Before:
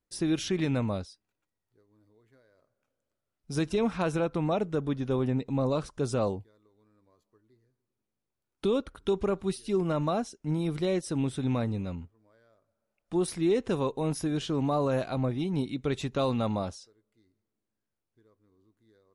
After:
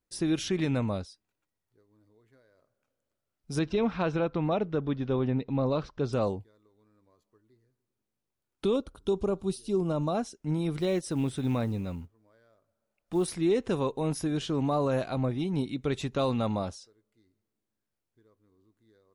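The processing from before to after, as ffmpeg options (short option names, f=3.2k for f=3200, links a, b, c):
-filter_complex "[0:a]asettb=1/sr,asplit=3[a][b][c];[a]atrim=end=3.594[d];[b]atrim=start=3.59:end=6.13,asetpts=PTS-STARTPTS,afade=t=in:d=0.004:c=qsin,afade=t=out:st=2.536:d=0.004:c=qsin,lowpass=f=4.8k:w=0.5412,lowpass=f=4.8k:w=1.3066[e];[c]atrim=start=6.126[f];[d][e]acrossfade=d=0.004:c1=hsin:c2=qsin[g];[g][f]acrossfade=d=0.004:c1=qsin:c2=hsin,asettb=1/sr,asplit=3[h][i][j];[h]atrim=end=8.764[k];[i]atrim=start=8.76:end=10.15,asetpts=PTS-STARTPTS,afade=t=in:d=0.004:c=qsin,afade=t=out:st=1.386:d=0.004:c=qsin,equalizer=f=1.9k:w=1.6:g=-14[l];[j]atrim=start=10.146[m];[k][l]acrossfade=d=0.004:c1=hsin:c2=qsin[n];[n][m]acrossfade=d=0.004:c1=qsin:c2=hsin,asettb=1/sr,asplit=3[o][p][q];[o]atrim=end=10.774[r];[p]atrim=start=10.77:end=13.33,asetpts=PTS-STARTPTS,afade=t=in:d=0.004:c=qsin,afade=t=out:st=2.556:d=0.004:c=qsin,acrusher=bits=9:mode=log:mix=0:aa=0.000001[s];[q]atrim=start=13.326[t];[r][s]acrossfade=d=0.004:c1=hsin:c2=qsin[u];[u][t]acrossfade=d=0.004:c1=qsin:c2=hsin"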